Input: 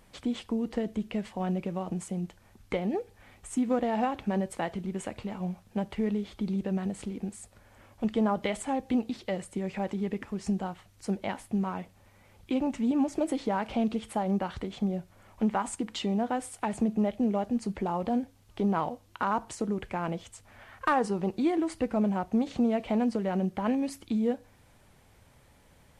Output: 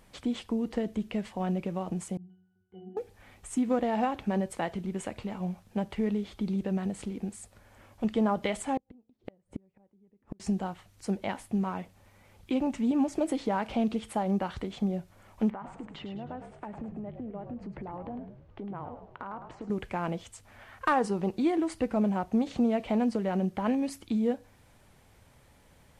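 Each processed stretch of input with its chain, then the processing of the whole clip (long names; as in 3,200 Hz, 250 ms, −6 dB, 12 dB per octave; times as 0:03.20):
0:02.17–0:02.97: low-shelf EQ 100 Hz −8 dB + resonances in every octave F#, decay 0.73 s + flutter between parallel walls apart 8.9 metres, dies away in 0.35 s
0:08.77–0:10.40: tilt shelving filter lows +9.5 dB, about 1,400 Hz + gate with flip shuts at −23 dBFS, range −40 dB
0:15.50–0:19.70: low-pass filter 1,800 Hz + downward compressor 4 to 1, threshold −38 dBFS + echo with shifted repeats 105 ms, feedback 44%, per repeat −54 Hz, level −8 dB
whole clip: no processing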